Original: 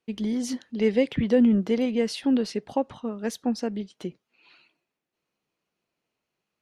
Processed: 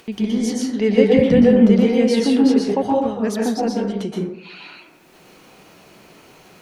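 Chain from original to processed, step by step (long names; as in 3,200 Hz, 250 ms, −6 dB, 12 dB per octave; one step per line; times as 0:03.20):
in parallel at +1.5 dB: upward compression, threshold −25 dBFS
on the sum: convolution reverb RT60 0.75 s, pre-delay 113 ms, DRR −3 dB
level −3 dB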